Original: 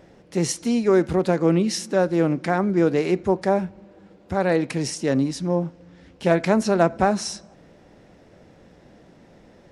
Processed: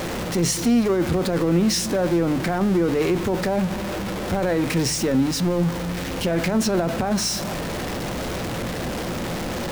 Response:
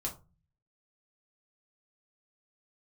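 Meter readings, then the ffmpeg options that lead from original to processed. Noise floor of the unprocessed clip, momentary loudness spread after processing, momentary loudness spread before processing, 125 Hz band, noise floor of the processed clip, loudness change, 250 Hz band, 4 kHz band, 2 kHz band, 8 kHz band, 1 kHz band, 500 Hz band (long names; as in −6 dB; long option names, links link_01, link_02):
−52 dBFS, 8 LU, 8 LU, +2.5 dB, −28 dBFS, −0.5 dB, +1.5 dB, +7.0 dB, +1.5 dB, +5.5 dB, −1.5 dB, −1.5 dB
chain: -filter_complex "[0:a]aeval=exprs='val(0)+0.5*0.0631*sgn(val(0))':channel_layout=same,alimiter=limit=-15dB:level=0:latency=1:release=11,aeval=exprs='val(0)+0.0112*(sin(2*PI*60*n/s)+sin(2*PI*2*60*n/s)/2+sin(2*PI*3*60*n/s)/3+sin(2*PI*4*60*n/s)/4+sin(2*PI*5*60*n/s)/5)':channel_layout=same,asplit=2[link_01][link_02];[1:a]atrim=start_sample=2205,lowpass=7300[link_03];[link_02][link_03]afir=irnorm=-1:irlink=0,volume=-12.5dB[link_04];[link_01][link_04]amix=inputs=2:normalize=0"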